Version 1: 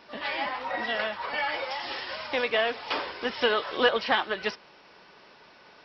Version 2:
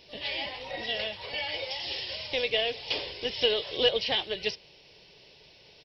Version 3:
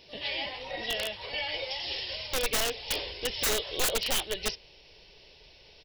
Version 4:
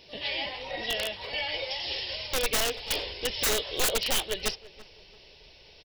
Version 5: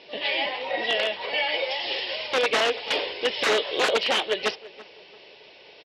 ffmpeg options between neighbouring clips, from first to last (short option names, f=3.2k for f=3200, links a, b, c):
-af "firequalizer=gain_entry='entry(120,0);entry(230,-16);entry(430,-8);entry(1300,-29);entry(2000,-13);entry(2900,-4)':delay=0.05:min_phase=1,volume=8dB"
-af "aeval=exprs='(mod(11.2*val(0)+1,2)-1)/11.2':c=same,asubboost=boost=6:cutoff=57"
-filter_complex "[0:a]asplit=2[a][b];[b]adelay=336,lowpass=f=1.9k:p=1,volume=-18dB,asplit=2[c][d];[d]adelay=336,lowpass=f=1.9k:p=1,volume=0.29,asplit=2[e][f];[f]adelay=336,lowpass=f=1.9k:p=1,volume=0.29[g];[a][c][e][g]amix=inputs=4:normalize=0,volume=1.5dB"
-af "highpass=300,lowpass=2.9k,volume=8.5dB"